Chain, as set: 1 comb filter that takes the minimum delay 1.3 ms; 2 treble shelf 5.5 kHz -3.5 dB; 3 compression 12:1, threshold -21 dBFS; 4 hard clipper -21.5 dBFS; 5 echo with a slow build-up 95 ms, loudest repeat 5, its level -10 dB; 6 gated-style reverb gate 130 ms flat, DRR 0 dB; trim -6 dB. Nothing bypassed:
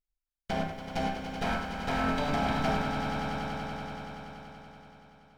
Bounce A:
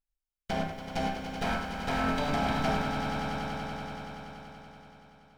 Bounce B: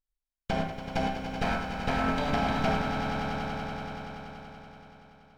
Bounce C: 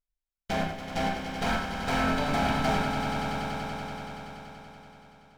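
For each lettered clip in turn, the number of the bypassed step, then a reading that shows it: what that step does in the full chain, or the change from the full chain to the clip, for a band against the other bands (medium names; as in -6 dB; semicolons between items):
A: 2, 8 kHz band +1.5 dB; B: 4, distortion -12 dB; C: 3, mean gain reduction 4.5 dB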